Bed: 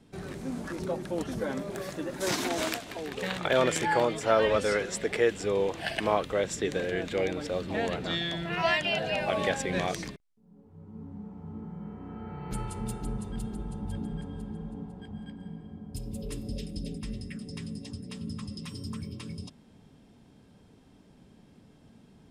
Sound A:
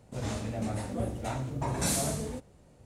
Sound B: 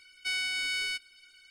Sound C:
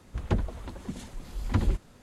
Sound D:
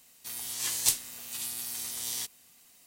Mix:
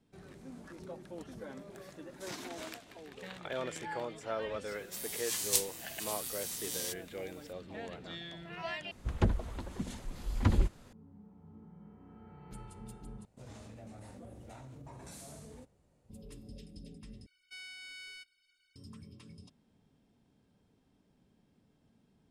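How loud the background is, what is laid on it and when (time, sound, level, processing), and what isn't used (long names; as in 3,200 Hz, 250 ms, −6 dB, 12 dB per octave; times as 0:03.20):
bed −13.5 dB
0:04.67: mix in D −4 dB
0:08.91: overwrite with C −1.5 dB
0:13.25: overwrite with A −12.5 dB + downward compressor, threshold −33 dBFS
0:17.26: overwrite with B −16.5 dB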